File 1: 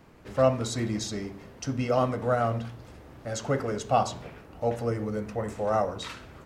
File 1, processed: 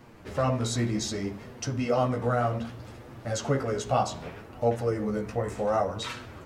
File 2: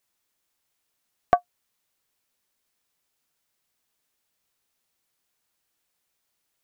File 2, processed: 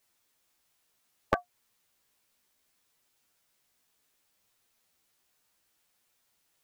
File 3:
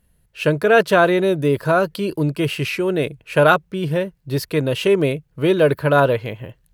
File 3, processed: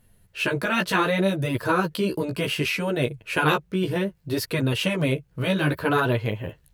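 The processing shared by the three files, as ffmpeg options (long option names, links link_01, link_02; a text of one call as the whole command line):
ffmpeg -i in.wav -filter_complex "[0:a]afftfilt=real='re*lt(hypot(re,im),0.891)':imag='im*lt(hypot(re,im),0.891)':win_size=1024:overlap=0.75,asplit=2[link_01][link_02];[link_02]acompressor=threshold=-31dB:ratio=10,volume=1dB[link_03];[link_01][link_03]amix=inputs=2:normalize=0,flanger=delay=8.2:depth=8.6:regen=5:speed=0.65:shape=sinusoidal" out.wav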